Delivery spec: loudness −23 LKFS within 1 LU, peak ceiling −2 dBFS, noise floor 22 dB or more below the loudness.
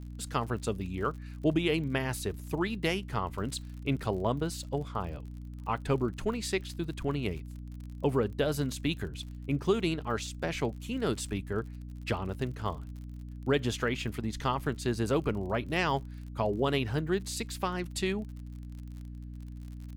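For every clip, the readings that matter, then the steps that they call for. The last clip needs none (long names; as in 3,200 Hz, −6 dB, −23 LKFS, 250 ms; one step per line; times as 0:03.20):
crackle rate 52 per second; mains hum 60 Hz; hum harmonics up to 300 Hz; level of the hum −40 dBFS; integrated loudness −32.5 LKFS; sample peak −16.0 dBFS; target loudness −23.0 LKFS
→ click removal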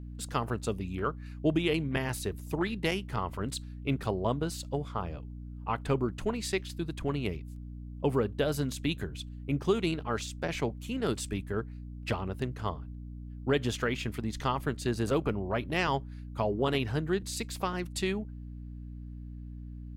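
crackle rate 0.20 per second; mains hum 60 Hz; hum harmonics up to 300 Hz; level of the hum −40 dBFS
→ mains-hum notches 60/120/180/240/300 Hz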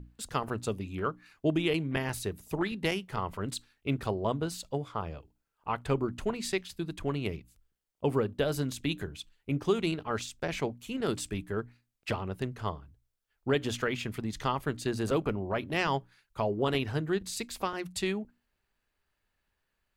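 mains hum none found; integrated loudness −33.0 LKFS; sample peak −16.0 dBFS; target loudness −23.0 LKFS
→ level +10 dB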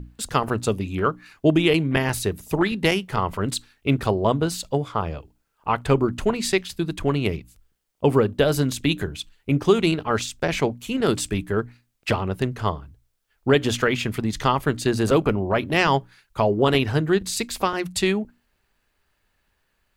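integrated loudness −23.0 LKFS; sample peak −6.0 dBFS; background noise floor −71 dBFS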